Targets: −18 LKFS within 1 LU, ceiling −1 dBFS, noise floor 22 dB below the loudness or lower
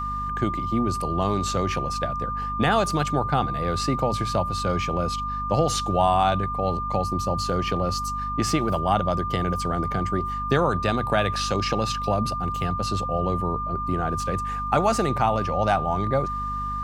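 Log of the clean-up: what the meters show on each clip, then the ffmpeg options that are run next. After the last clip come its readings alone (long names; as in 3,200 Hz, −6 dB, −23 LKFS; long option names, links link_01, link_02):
mains hum 50 Hz; hum harmonics up to 250 Hz; level of the hum −31 dBFS; interfering tone 1,200 Hz; level of the tone −27 dBFS; integrated loudness −24.5 LKFS; sample peak −7.5 dBFS; target loudness −18.0 LKFS
→ -af "bandreject=frequency=50:width_type=h:width=4,bandreject=frequency=100:width_type=h:width=4,bandreject=frequency=150:width_type=h:width=4,bandreject=frequency=200:width_type=h:width=4,bandreject=frequency=250:width_type=h:width=4"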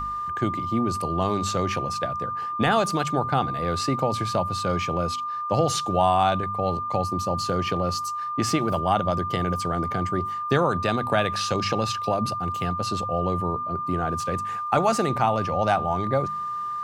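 mains hum none found; interfering tone 1,200 Hz; level of the tone −27 dBFS
→ -af "bandreject=frequency=1200:width=30"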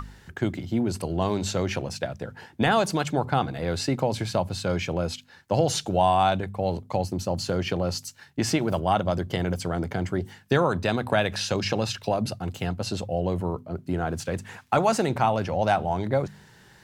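interfering tone none found; integrated loudness −26.5 LKFS; sample peak −8.0 dBFS; target loudness −18.0 LKFS
→ -af "volume=8.5dB,alimiter=limit=-1dB:level=0:latency=1"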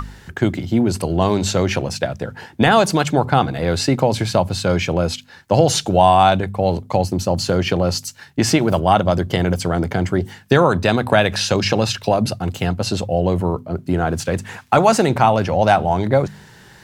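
integrated loudness −18.0 LKFS; sample peak −1.0 dBFS; background noise floor −45 dBFS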